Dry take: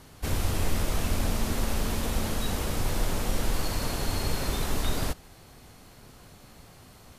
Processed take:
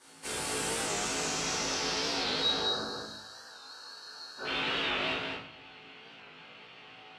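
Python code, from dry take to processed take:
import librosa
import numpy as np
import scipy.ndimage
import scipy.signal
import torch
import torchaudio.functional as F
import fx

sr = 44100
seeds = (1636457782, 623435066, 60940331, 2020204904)

y = fx.pre_emphasis(x, sr, coefficient=0.97, at=(2.8, 4.37), fade=0.02)
y = fx.spec_box(y, sr, start_s=2.4, length_s=2.05, low_hz=1800.0, high_hz=3800.0, gain_db=-26)
y = fx.weighting(y, sr, curve='A')
y = fx.filter_sweep_lowpass(y, sr, from_hz=9100.0, to_hz=2900.0, start_s=0.46, end_s=3.38, q=3.6)
y = fx.comb_fb(y, sr, f0_hz=54.0, decay_s=0.26, harmonics='all', damping=0.0, mix_pct=80)
y = y + 10.0 ** (-4.0 / 20.0) * np.pad(y, (int(209 * sr / 1000.0), 0))[:len(y)]
y = fx.room_shoebox(y, sr, seeds[0], volume_m3=92.0, walls='mixed', distance_m=2.3)
y = fx.record_warp(y, sr, rpm=45.0, depth_cents=100.0)
y = F.gain(torch.from_numpy(y), -5.5).numpy()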